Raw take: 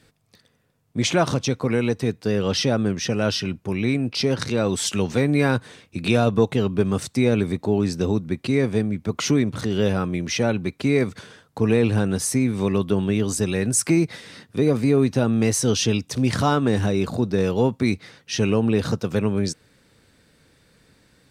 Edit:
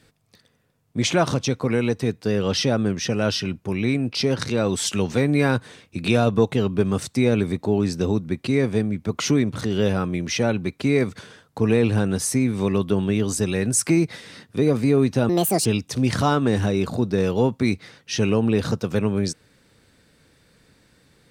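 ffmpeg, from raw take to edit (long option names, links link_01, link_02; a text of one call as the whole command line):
ffmpeg -i in.wav -filter_complex "[0:a]asplit=3[link_01][link_02][link_03];[link_01]atrim=end=15.294[link_04];[link_02]atrim=start=15.29:end=15.86,asetpts=PTS-STARTPTS,asetrate=68355,aresample=44100,atrim=end_sample=16217,asetpts=PTS-STARTPTS[link_05];[link_03]atrim=start=15.856[link_06];[link_04][link_05]acrossfade=duration=0.004:curve1=hsin:curve2=hsin[link_07];[link_07][link_06]acrossfade=duration=0.004:curve1=hsin:curve2=hsin" out.wav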